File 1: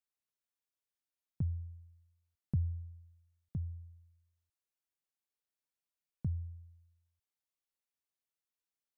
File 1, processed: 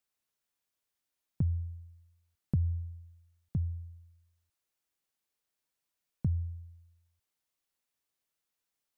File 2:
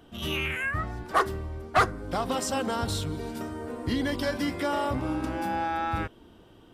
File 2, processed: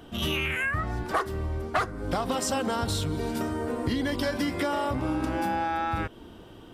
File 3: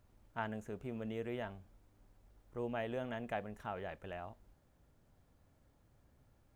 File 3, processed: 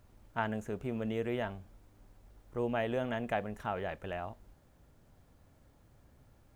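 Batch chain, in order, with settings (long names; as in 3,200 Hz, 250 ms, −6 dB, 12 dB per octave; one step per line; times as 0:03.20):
downward compressor 6 to 1, threshold −31 dBFS
level +6.5 dB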